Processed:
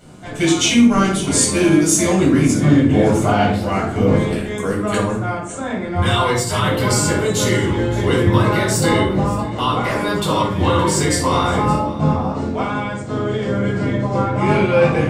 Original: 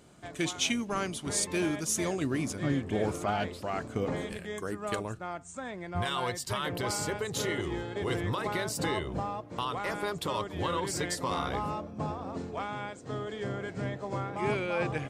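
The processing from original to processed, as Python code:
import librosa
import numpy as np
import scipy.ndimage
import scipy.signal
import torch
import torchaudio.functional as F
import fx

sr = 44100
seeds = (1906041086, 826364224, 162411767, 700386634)

y = fx.dynamic_eq(x, sr, hz=7800.0, q=2.5, threshold_db=-50.0, ratio=4.0, max_db=5)
y = y + 10.0 ** (-18.0 / 20.0) * np.pad(y, (int(568 * sr / 1000.0), 0))[:len(y)]
y = fx.room_shoebox(y, sr, seeds[0], volume_m3=730.0, walls='furnished', distance_m=7.3)
y = y * 10.0 ** (4.5 / 20.0)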